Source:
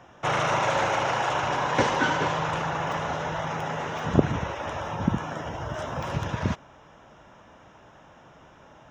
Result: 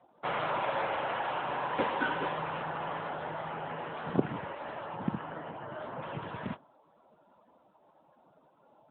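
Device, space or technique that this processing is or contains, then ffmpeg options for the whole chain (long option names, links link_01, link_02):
mobile call with aggressive noise cancelling: -af "highpass=170,afftdn=noise_reduction=25:noise_floor=-47,volume=-6dB" -ar 8000 -c:a libopencore_amrnb -b:a 10200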